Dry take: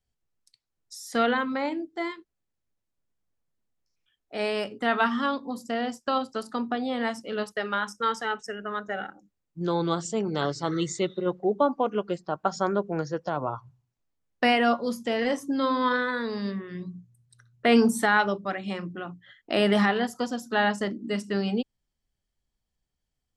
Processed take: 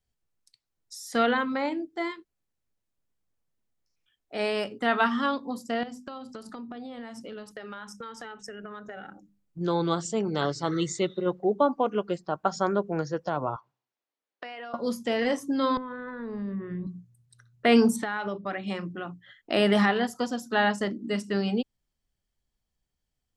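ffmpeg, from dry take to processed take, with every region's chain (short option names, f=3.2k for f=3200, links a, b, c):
-filter_complex "[0:a]asettb=1/sr,asplit=3[a][b][c];[a]atrim=end=5.834[d];[b]atrim=start=5.83:end=9.59,asetpts=PTS-STARTPTS,afade=t=in:d=0.004:c=qsin,afade=t=out:st=3.756:d=0.004:c=qsin,lowshelf=f=230:g=8.5,bandreject=f=50:t=h:w=6,bandreject=f=100:t=h:w=6,bandreject=f=150:t=h:w=6,bandreject=f=200:t=h:w=6,bandreject=f=250:t=h:w=6,bandreject=f=300:t=h:w=6,acompressor=threshold=-36dB:ratio=10:attack=3.2:release=140:knee=1:detection=peak[e];[c]atrim=start=9.586[f];[d][e]acrossfade=d=0.004:c1=hsin:c2=qsin[g];[g][f]acrossfade=d=0.004:c1=qsin:c2=hsin,asettb=1/sr,asplit=3[h][i][j];[h]atrim=end=13.564[k];[i]atrim=start=13.56:end=14.74,asetpts=PTS-STARTPTS,afade=t=in:d=0.004:c=qsin,afade=t=out:st=1.176:d=0.004:c=qsin,acrossover=split=300 5800:gain=0.0891 1 0.112[l][m][n];[l][m][n]amix=inputs=3:normalize=0,acompressor=threshold=-36dB:ratio=12:attack=3.2:release=140:knee=1:detection=peak,highpass=190[o];[j]atrim=start=14.736[p];[k][o]acrossfade=d=0.004:c1=hsin:c2=qsin[q];[q][p]acrossfade=d=0.004:c1=qsin:c2=hsin,asettb=1/sr,asplit=3[r][s][t];[r]atrim=end=15.774[u];[s]atrim=start=15.77:end=16.87,asetpts=PTS-STARTPTS,afade=t=in:d=0.004:c=qsin,afade=t=out:st=1.096:d=0.004:c=qsin,lowpass=2k,acompressor=threshold=-34dB:ratio=16:attack=3.2:release=140:knee=1:detection=peak,aemphasis=mode=reproduction:type=bsi[v];[t]atrim=start=16.866[w];[u][v]acrossfade=d=0.004:c1=hsin:c2=qsin[x];[x][w]acrossfade=d=0.004:c1=qsin:c2=hsin,asettb=1/sr,asplit=3[y][z][aa];[y]atrim=end=17.964[ab];[z]atrim=start=17.96:end=18.67,asetpts=PTS-STARTPTS,afade=t=in:d=0.004:c=qsin,afade=t=out:st=0.706:d=0.004:c=qsin,lowpass=4.4k,acompressor=threshold=-25dB:ratio=12:attack=3.2:release=140:knee=1:detection=peak[ac];[aa]atrim=start=18.666[ad];[ab][ac]acrossfade=d=0.004:c1=hsin:c2=qsin[ae];[ae][ad]acrossfade=d=0.004:c1=qsin:c2=hsin"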